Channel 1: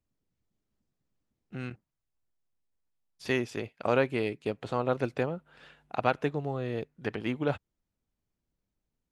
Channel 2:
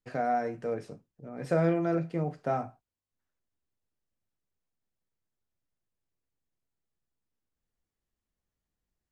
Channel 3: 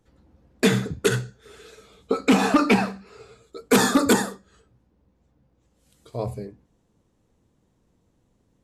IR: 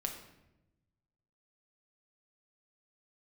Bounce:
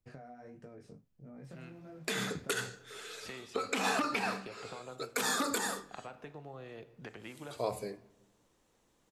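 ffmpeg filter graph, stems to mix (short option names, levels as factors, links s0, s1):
-filter_complex "[0:a]acrossover=split=110|500[s0][s1][s2];[s0]acompressor=threshold=0.00126:ratio=4[s3];[s1]acompressor=threshold=0.00794:ratio=4[s4];[s2]acompressor=threshold=0.02:ratio=4[s5];[s3][s4][s5]amix=inputs=3:normalize=0,volume=0.596,asplit=2[s6][s7];[s7]volume=0.224[s8];[1:a]bass=f=250:g=5,treble=f=4000:g=3,acompressor=threshold=0.0316:ratio=6,flanger=delay=20:depth=4.3:speed=1.5,volume=0.473[s9];[2:a]highpass=f=990:p=1,acompressor=threshold=0.0355:ratio=10,adelay=1450,volume=1.33,asplit=2[s10][s11];[s11]volume=0.251[s12];[s6][s9]amix=inputs=2:normalize=0,lowshelf=f=140:g=5.5,acompressor=threshold=0.00447:ratio=10,volume=1[s13];[3:a]atrim=start_sample=2205[s14];[s8][s12]amix=inputs=2:normalize=0[s15];[s15][s14]afir=irnorm=-1:irlink=0[s16];[s10][s13][s16]amix=inputs=3:normalize=0,alimiter=limit=0.1:level=0:latency=1:release=153"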